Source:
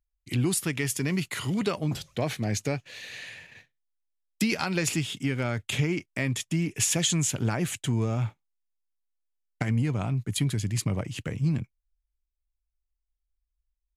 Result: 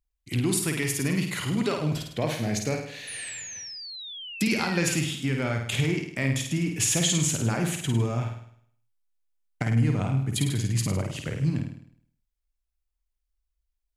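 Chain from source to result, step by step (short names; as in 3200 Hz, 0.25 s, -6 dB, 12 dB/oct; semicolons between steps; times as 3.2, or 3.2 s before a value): flutter echo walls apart 8.9 m, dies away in 0.63 s; painted sound fall, 3.07–4.95, 1500–10000 Hz -39 dBFS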